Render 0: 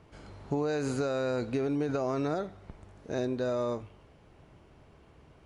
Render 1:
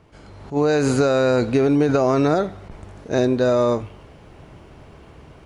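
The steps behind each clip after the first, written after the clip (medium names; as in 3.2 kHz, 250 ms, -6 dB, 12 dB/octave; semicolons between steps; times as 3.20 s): level rider gain up to 9 dB; attacks held to a fixed rise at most 270 dB/s; trim +4 dB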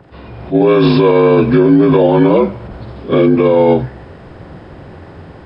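frequency axis rescaled in octaves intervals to 81%; loudness maximiser +14 dB; trim -1 dB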